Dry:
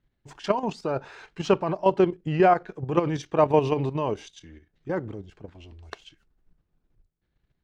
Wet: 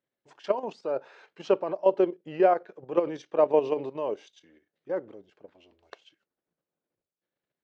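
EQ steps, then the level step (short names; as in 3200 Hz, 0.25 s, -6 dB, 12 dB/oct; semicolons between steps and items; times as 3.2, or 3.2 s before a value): dynamic EQ 370 Hz, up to +5 dB, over -29 dBFS, Q 0.99; BPF 290–5800 Hz; bell 550 Hz +8 dB 0.44 oct; -8.0 dB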